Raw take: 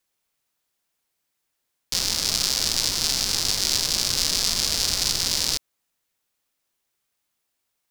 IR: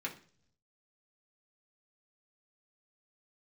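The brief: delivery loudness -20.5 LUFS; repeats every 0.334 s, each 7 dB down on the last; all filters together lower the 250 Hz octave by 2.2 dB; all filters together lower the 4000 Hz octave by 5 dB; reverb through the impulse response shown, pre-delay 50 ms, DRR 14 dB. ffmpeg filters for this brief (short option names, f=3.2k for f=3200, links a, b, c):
-filter_complex "[0:a]equalizer=f=250:t=o:g=-3,equalizer=f=4k:t=o:g=-6.5,aecho=1:1:334|668|1002|1336|1670:0.447|0.201|0.0905|0.0407|0.0183,asplit=2[a][b];[1:a]atrim=start_sample=2205,adelay=50[c];[b][c]afir=irnorm=-1:irlink=0,volume=-16dB[d];[a][d]amix=inputs=2:normalize=0,volume=3.5dB"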